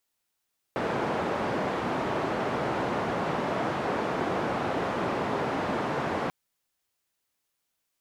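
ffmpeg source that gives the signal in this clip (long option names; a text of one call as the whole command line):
ffmpeg -f lavfi -i "anoisesrc=color=white:duration=5.54:sample_rate=44100:seed=1,highpass=frequency=130,lowpass=frequency=870,volume=-9.9dB" out.wav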